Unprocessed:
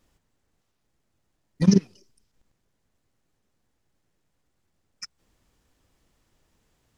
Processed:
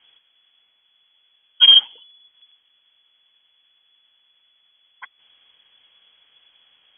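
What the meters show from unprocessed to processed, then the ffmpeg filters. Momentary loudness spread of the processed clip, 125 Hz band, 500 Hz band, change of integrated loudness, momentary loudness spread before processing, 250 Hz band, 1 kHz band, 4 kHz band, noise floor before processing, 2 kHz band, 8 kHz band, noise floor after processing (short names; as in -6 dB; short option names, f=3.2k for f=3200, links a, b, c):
3 LU, under -40 dB, under -20 dB, +11.0 dB, 3 LU, under -35 dB, +8.0 dB, +30.0 dB, -75 dBFS, +12.5 dB, n/a, -64 dBFS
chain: -af "apsyclip=15dB,lowpass=f=2.9k:t=q:w=0.5098,lowpass=f=2.9k:t=q:w=0.6013,lowpass=f=2.9k:t=q:w=0.9,lowpass=f=2.9k:t=q:w=2.563,afreqshift=-3400,volume=-4dB"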